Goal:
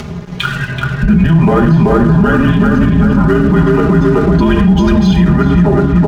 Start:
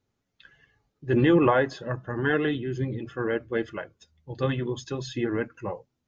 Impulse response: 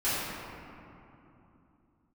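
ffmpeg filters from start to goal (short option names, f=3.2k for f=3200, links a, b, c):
-filter_complex "[0:a]aemphasis=mode=reproduction:type=riaa,afreqshift=-180,highpass=82,bandreject=f=50:t=h:w=6,bandreject=f=100:t=h:w=6,bandreject=f=150:t=h:w=6,bandreject=f=200:t=h:w=6,bandreject=f=250:t=h:w=6,bandreject=f=300:t=h:w=6,bandreject=f=350:t=h:w=6,asplit=2[a][b];[b]adelay=380,lowpass=f=1.6k:p=1,volume=-3dB,asplit=2[c][d];[d]adelay=380,lowpass=f=1.6k:p=1,volume=0.48,asplit=2[e][f];[f]adelay=380,lowpass=f=1.6k:p=1,volume=0.48,asplit=2[g][h];[h]adelay=380,lowpass=f=1.6k:p=1,volume=0.48,asplit=2[i][j];[j]adelay=380,lowpass=f=1.6k:p=1,volume=0.48,asplit=2[k][l];[l]adelay=380,lowpass=f=1.6k:p=1,volume=0.48[m];[a][c][e][g][i][k][m]amix=inputs=7:normalize=0,acompressor=mode=upward:threshold=-23dB:ratio=2.5,asplit=2[n][o];[1:a]atrim=start_sample=2205,atrim=end_sample=6174[p];[o][p]afir=irnorm=-1:irlink=0,volume=-13dB[q];[n][q]amix=inputs=2:normalize=0,acompressor=threshold=-22dB:ratio=6,aeval=exprs='sgn(val(0))*max(abs(val(0))-0.00355,0)':c=same,aecho=1:1:4.9:0.73,alimiter=level_in=23dB:limit=-1dB:release=50:level=0:latency=1,volume=-1dB"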